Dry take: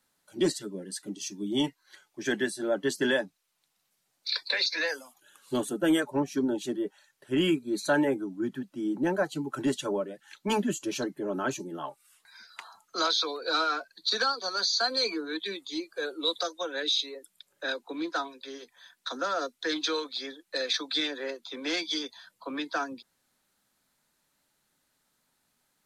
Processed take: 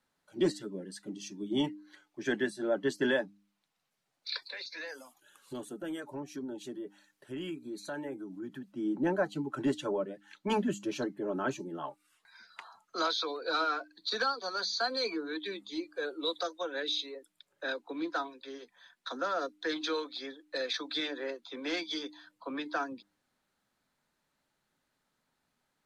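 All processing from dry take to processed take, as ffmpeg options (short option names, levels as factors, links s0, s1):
-filter_complex "[0:a]asettb=1/sr,asplit=3[s0][s1][s2];[s0]atrim=end=4.424[s3];[s1]atrim=start=4.42:end=8.72,asetpts=PTS-STARTPTS,afade=t=in:d=0.004:c=qsin,afade=t=out:st=4.296:d=0.004:c=qsin,highshelf=f=6300:g=10,acompressor=threshold=0.0112:ratio=2.5:attack=3.2:release=140:knee=1:detection=peak[s4];[s2]atrim=start=8.716[s5];[s3][s4]acrossfade=d=0.004:c1=hsin:c2=qsin[s6];[s6][s5]acrossfade=d=0.004:c1=qsin:c2=hsin,lowpass=f=2800:p=1,bandreject=f=100.9:t=h:w=4,bandreject=f=201.8:t=h:w=4,bandreject=f=302.7:t=h:w=4,volume=0.794"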